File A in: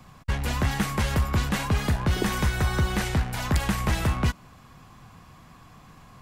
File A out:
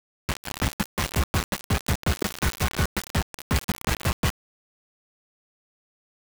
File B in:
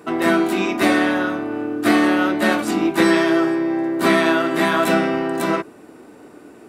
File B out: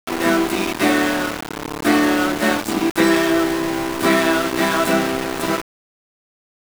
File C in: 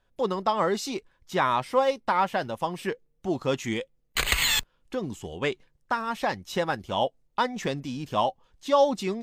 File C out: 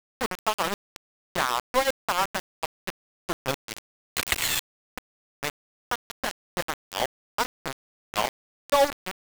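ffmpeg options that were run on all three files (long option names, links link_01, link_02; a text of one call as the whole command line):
ffmpeg -i in.wav -af "aeval=exprs='val(0)*gte(abs(val(0)),0.1)':channel_layout=same" out.wav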